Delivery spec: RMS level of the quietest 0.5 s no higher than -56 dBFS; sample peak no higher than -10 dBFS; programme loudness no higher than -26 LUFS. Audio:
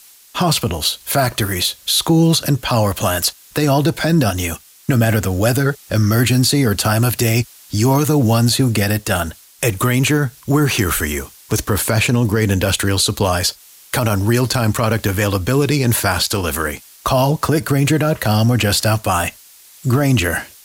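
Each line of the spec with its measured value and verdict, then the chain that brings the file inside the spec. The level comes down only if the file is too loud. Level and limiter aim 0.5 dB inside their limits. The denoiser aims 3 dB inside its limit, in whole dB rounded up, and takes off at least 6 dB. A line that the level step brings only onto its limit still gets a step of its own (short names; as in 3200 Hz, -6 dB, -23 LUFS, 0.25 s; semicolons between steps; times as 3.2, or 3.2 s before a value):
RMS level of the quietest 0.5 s -44 dBFS: fail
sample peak -5.5 dBFS: fail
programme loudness -16.5 LUFS: fail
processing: denoiser 6 dB, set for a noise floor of -44 dBFS; gain -10 dB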